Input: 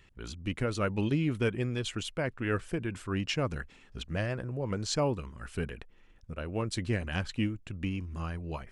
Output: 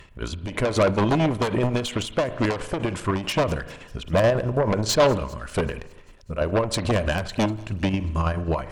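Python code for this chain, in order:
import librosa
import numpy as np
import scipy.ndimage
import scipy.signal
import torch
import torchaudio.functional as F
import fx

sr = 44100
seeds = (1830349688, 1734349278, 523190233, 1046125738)

p1 = fx.dynamic_eq(x, sr, hz=550.0, q=0.71, threshold_db=-40.0, ratio=4.0, max_db=4)
p2 = fx.chopper(p1, sr, hz=9.2, depth_pct=60, duty_pct=60)
p3 = fx.fold_sine(p2, sr, drive_db=12, ceiling_db=-17.5)
p4 = p2 + (p3 * 10.0 ** (-7.0 / 20.0))
p5 = fx.small_body(p4, sr, hz=(610.0, 1000.0), ring_ms=20, db=8)
p6 = p5 + fx.echo_wet_highpass(p5, sr, ms=196, feedback_pct=65, hz=4900.0, wet_db=-20.0, dry=0)
p7 = fx.rev_spring(p6, sr, rt60_s=1.0, pass_ms=(37,), chirp_ms=35, drr_db=14.5)
p8 = fx.end_taper(p7, sr, db_per_s=120.0)
y = p8 * 10.0 ** (3.0 / 20.0)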